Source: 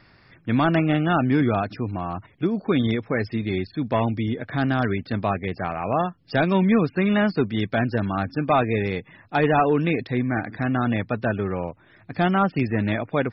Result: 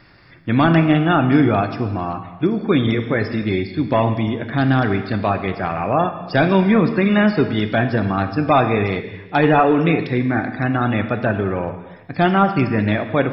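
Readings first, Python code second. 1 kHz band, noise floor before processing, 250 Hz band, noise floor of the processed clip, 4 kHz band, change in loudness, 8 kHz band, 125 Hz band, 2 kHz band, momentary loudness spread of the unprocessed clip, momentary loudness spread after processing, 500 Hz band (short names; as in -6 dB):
+5.5 dB, -55 dBFS, +5.0 dB, -40 dBFS, +5.5 dB, +5.0 dB, n/a, +5.0 dB, +5.5 dB, 8 LU, 8 LU, +5.0 dB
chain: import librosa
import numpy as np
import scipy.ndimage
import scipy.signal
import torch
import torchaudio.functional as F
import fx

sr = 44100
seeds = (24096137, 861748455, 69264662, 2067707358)

y = fx.rev_gated(x, sr, seeds[0], gate_ms=440, shape='falling', drr_db=7.0)
y = y * librosa.db_to_amplitude(4.5)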